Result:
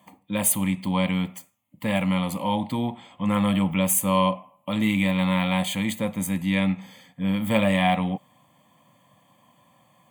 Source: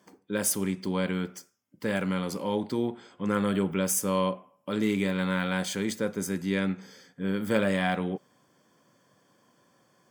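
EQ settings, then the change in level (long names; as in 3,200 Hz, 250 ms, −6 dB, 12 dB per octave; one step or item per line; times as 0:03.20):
phaser with its sweep stopped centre 1,500 Hz, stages 6
+9.0 dB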